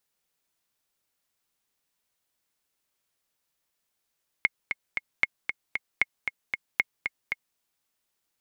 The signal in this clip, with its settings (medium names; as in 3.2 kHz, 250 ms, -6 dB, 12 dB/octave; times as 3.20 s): metronome 230 bpm, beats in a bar 3, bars 4, 2.16 kHz, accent 7 dB -7.5 dBFS